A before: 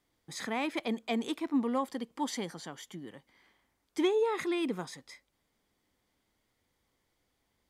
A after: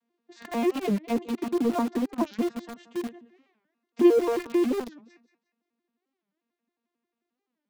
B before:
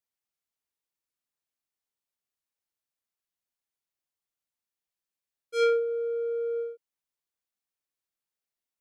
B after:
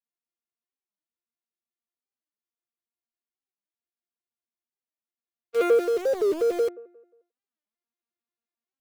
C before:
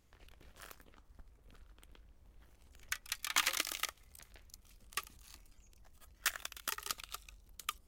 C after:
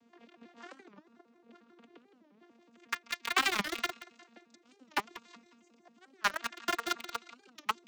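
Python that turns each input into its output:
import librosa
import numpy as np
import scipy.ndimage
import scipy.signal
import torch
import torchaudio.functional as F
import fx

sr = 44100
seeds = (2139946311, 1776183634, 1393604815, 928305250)

p1 = fx.vocoder_arp(x, sr, chord='bare fifth', root=58, every_ms=89)
p2 = scipy.signal.sosfilt(scipy.signal.butter(2, 6100.0, 'lowpass', fs=sr, output='sos'), p1)
p3 = fx.low_shelf(p2, sr, hz=300.0, db=-2.0)
p4 = p3 + fx.echo_feedback(p3, sr, ms=178, feedback_pct=31, wet_db=-13.0, dry=0)
p5 = fx.rider(p4, sr, range_db=4, speed_s=2.0)
p6 = fx.quant_companded(p5, sr, bits=2)
p7 = p5 + (p6 * 10.0 ** (-10.5 / 20.0))
p8 = fx.dynamic_eq(p7, sr, hz=450.0, q=1.2, threshold_db=-37.0, ratio=4.0, max_db=4)
p9 = fx.record_warp(p8, sr, rpm=45.0, depth_cents=250.0)
y = p9 * 10.0 ** (2.0 / 20.0)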